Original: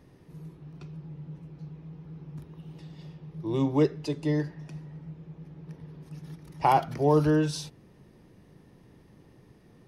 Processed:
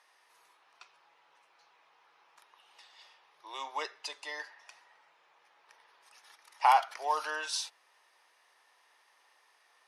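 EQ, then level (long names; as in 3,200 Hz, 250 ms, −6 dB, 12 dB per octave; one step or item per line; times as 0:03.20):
high-pass filter 870 Hz 24 dB per octave
low-pass filter 11,000 Hz 24 dB per octave
+3.0 dB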